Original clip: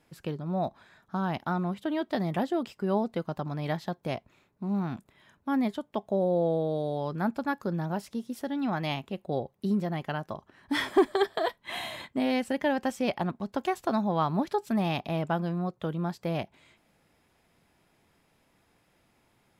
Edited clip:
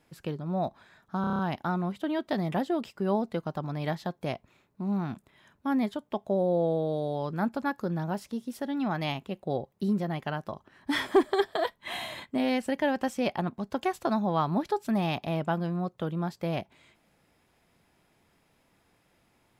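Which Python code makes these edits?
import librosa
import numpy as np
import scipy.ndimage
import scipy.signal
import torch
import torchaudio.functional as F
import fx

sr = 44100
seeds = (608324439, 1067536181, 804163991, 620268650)

y = fx.edit(x, sr, fx.stutter(start_s=1.21, slice_s=0.03, count=7), tone=tone)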